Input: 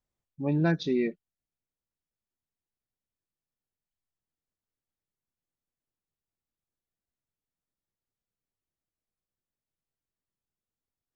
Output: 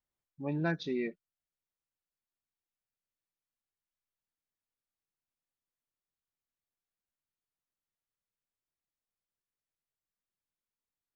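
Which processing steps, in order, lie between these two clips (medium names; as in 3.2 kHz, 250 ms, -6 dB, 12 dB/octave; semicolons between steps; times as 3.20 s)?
peaking EQ 1.5 kHz +6 dB 2.8 oct; trim -8.5 dB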